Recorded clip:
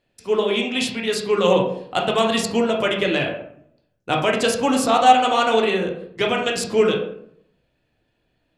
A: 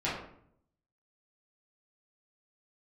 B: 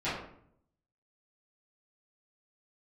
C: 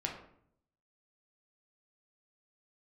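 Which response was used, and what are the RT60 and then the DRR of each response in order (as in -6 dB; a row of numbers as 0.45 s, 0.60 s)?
C; 0.65 s, 0.65 s, 0.65 s; -9.5 dB, -14.5 dB, -0.5 dB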